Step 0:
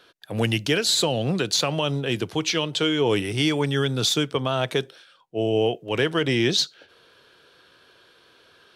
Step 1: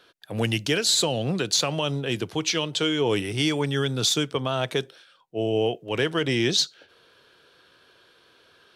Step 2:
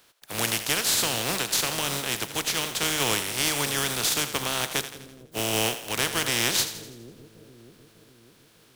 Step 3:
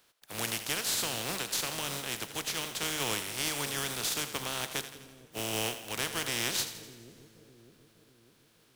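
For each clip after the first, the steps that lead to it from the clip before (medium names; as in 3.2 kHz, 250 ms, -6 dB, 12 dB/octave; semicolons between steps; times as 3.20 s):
dynamic bell 7 kHz, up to +4 dB, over -37 dBFS, Q 0.99; trim -2 dB
spectral contrast reduction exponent 0.29; two-band feedback delay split 450 Hz, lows 602 ms, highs 83 ms, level -11.5 dB; trim -2 dB
plate-style reverb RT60 2.7 s, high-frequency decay 0.9×, DRR 17 dB; trim -7.5 dB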